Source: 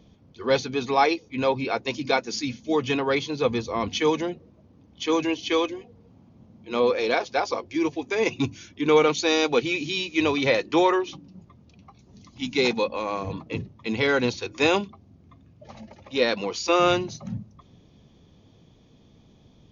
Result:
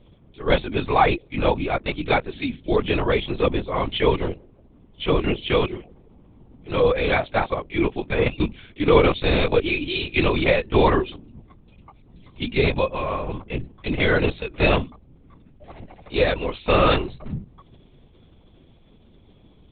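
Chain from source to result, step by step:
linear-prediction vocoder at 8 kHz whisper
level +3 dB

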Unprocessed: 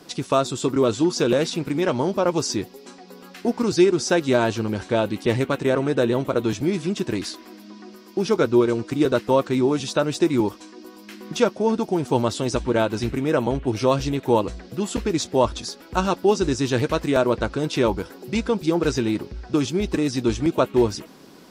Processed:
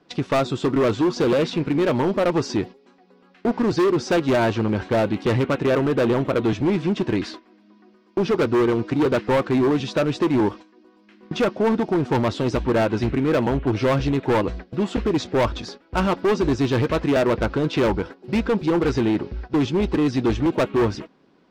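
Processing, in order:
noise gate −36 dBFS, range −15 dB
low-pass filter 3,000 Hz 12 dB per octave
hard clipping −19.5 dBFS, distortion −9 dB
level +4 dB

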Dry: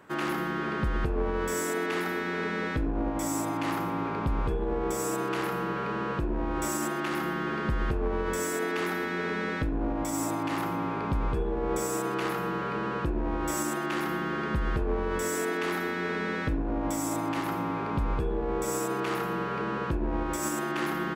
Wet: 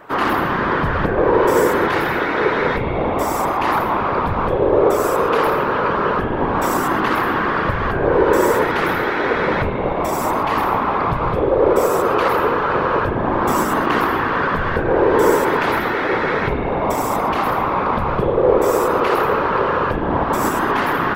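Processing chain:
octave-band graphic EQ 125/250/500/1,000/2,000/4,000/8,000 Hz +4/−5/+10/+9/+3/+4/−9 dB
convolution reverb RT60 5.3 s, pre-delay 34 ms, DRR 4.5 dB
random phases in short frames
high-shelf EQ 6,200 Hz +7.5 dB
level +4.5 dB

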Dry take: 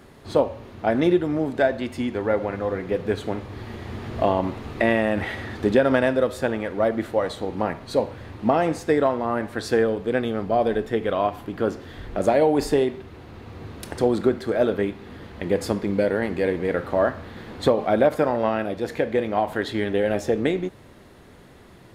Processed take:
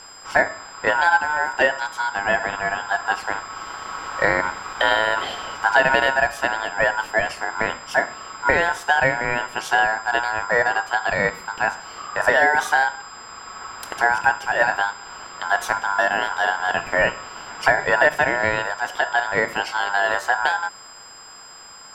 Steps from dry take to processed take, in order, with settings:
steady tone 6,200 Hz −43 dBFS
ring modulation 1,200 Hz
level +4.5 dB

